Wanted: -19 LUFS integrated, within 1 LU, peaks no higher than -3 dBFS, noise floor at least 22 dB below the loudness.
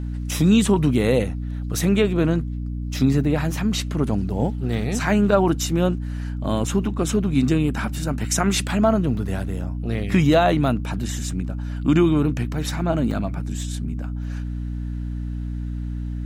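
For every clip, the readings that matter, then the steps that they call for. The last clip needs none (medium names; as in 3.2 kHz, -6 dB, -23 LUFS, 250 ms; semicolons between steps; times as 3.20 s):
dropouts 2; longest dropout 2.5 ms; hum 60 Hz; highest harmonic 300 Hz; hum level -25 dBFS; loudness -22.0 LUFS; peak level -5.0 dBFS; loudness target -19.0 LUFS
-> interpolate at 9.17/13.11 s, 2.5 ms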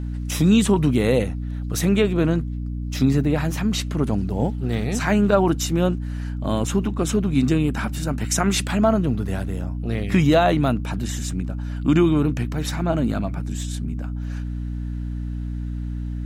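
dropouts 0; hum 60 Hz; highest harmonic 300 Hz; hum level -25 dBFS
-> hum notches 60/120/180/240/300 Hz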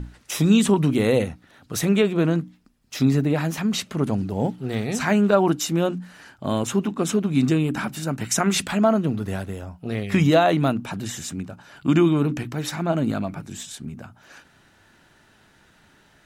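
hum not found; loudness -22.5 LUFS; peak level -4.5 dBFS; loudness target -19.0 LUFS
-> trim +3.5 dB; peak limiter -3 dBFS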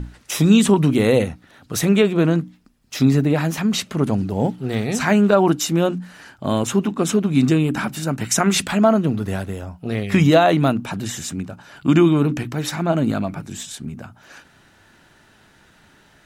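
loudness -19.0 LUFS; peak level -3.0 dBFS; noise floor -54 dBFS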